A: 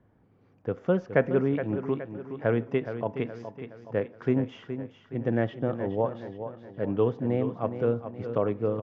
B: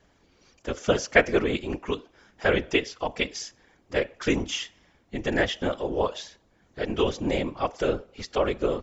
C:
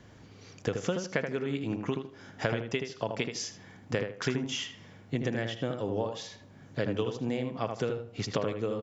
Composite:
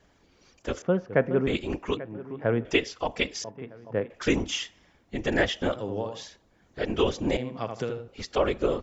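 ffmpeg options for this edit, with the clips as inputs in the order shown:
-filter_complex "[0:a]asplit=3[a][b][c];[2:a]asplit=2[d][e];[1:a]asplit=6[f][g][h][i][j][k];[f]atrim=end=0.822[l];[a]atrim=start=0.818:end=1.472[m];[g]atrim=start=1.468:end=1.972[n];[b]atrim=start=1.968:end=2.652[o];[h]atrim=start=2.648:end=3.442[p];[c]atrim=start=3.438:end=4.102[q];[i]atrim=start=4.098:end=5.762[r];[d]atrim=start=5.758:end=6.232[s];[j]atrim=start=6.228:end=7.372[t];[e]atrim=start=7.368:end=8.082[u];[k]atrim=start=8.078[v];[l][m]acrossfade=d=0.004:c1=hsin:c2=hsin[w];[w][n]acrossfade=d=0.004:c1=hsin:c2=hsin[x];[x][o]acrossfade=d=0.004:c1=hsin:c2=hsin[y];[y][p]acrossfade=d=0.004:c1=hsin:c2=hsin[z];[z][q]acrossfade=d=0.004:c1=hsin:c2=hsin[aa];[aa][r]acrossfade=d=0.004:c1=hsin:c2=hsin[ab];[ab][s]acrossfade=d=0.004:c1=hsin:c2=hsin[ac];[ac][t]acrossfade=d=0.004:c1=hsin:c2=hsin[ad];[ad][u]acrossfade=d=0.004:c1=hsin:c2=hsin[ae];[ae][v]acrossfade=d=0.004:c1=hsin:c2=hsin"

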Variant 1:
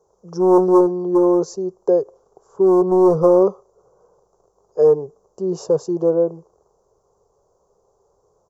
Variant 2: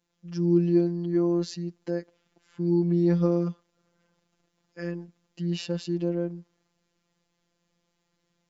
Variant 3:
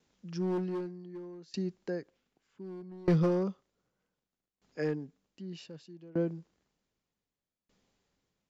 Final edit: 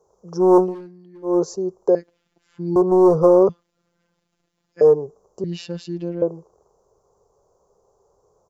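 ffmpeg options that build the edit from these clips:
-filter_complex "[1:a]asplit=3[a][b][c];[0:a]asplit=5[d][e][f][g][h];[d]atrim=end=0.75[i];[2:a]atrim=start=0.59:end=1.38[j];[e]atrim=start=1.22:end=1.952[k];[a]atrim=start=1.948:end=2.762[l];[f]atrim=start=2.758:end=3.492[m];[b]atrim=start=3.488:end=4.812[n];[g]atrim=start=4.808:end=5.442[o];[c]atrim=start=5.438:end=6.222[p];[h]atrim=start=6.218[q];[i][j]acrossfade=d=0.16:c1=tri:c2=tri[r];[r][k]acrossfade=d=0.16:c1=tri:c2=tri[s];[s][l]acrossfade=d=0.004:c1=hsin:c2=hsin[t];[t][m]acrossfade=d=0.004:c1=hsin:c2=hsin[u];[u][n]acrossfade=d=0.004:c1=hsin:c2=hsin[v];[v][o]acrossfade=d=0.004:c1=hsin:c2=hsin[w];[w][p]acrossfade=d=0.004:c1=hsin:c2=hsin[x];[x][q]acrossfade=d=0.004:c1=hsin:c2=hsin"

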